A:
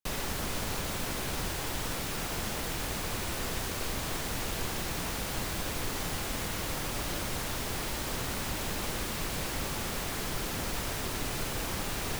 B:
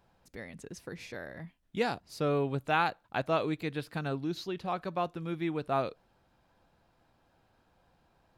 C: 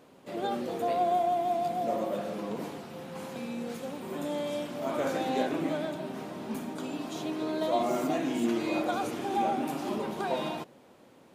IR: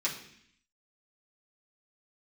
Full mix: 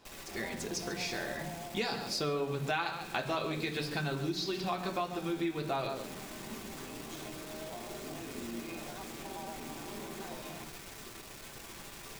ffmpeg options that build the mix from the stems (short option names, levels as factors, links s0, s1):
-filter_complex "[0:a]aeval=exprs='(tanh(35.5*val(0)+0.65)-tanh(0.65))/35.5':c=same,volume=0.237,asplit=2[s0][s1];[s1]volume=0.501[s2];[1:a]equalizer=f=5000:w=1.5:g=9.5,volume=1.26,asplit=3[s3][s4][s5];[s4]volume=0.596[s6];[s5]volume=0.335[s7];[2:a]acrossover=split=190[s8][s9];[s9]acompressor=threshold=0.0141:ratio=6[s10];[s8][s10]amix=inputs=2:normalize=0,tremolo=f=170:d=0.857,volume=0.473,asplit=2[s11][s12];[s12]volume=0.668[s13];[3:a]atrim=start_sample=2205[s14];[s2][s6][s13]amix=inputs=3:normalize=0[s15];[s15][s14]afir=irnorm=-1:irlink=0[s16];[s7]aecho=0:1:140:1[s17];[s0][s3][s11][s16][s17]amix=inputs=5:normalize=0,acompressor=threshold=0.0251:ratio=4"